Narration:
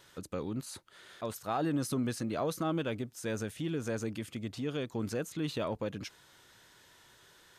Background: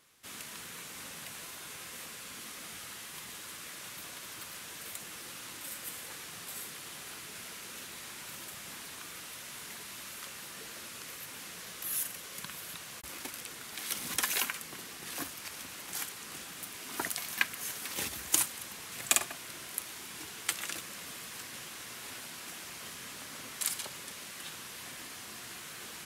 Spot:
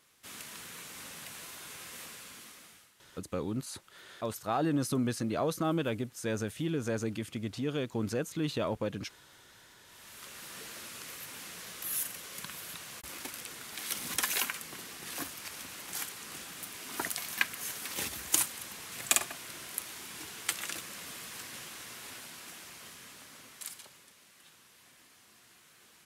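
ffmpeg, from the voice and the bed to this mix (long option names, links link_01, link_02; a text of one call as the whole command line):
ffmpeg -i stem1.wav -i stem2.wav -filter_complex "[0:a]adelay=3000,volume=2dB[link_01];[1:a]volume=19.5dB,afade=type=out:start_time=2.05:duration=0.87:silence=0.105925,afade=type=in:start_time=9.83:duration=0.73:silence=0.0944061,afade=type=out:start_time=21.53:duration=2.6:silence=0.177828[link_02];[link_01][link_02]amix=inputs=2:normalize=0" out.wav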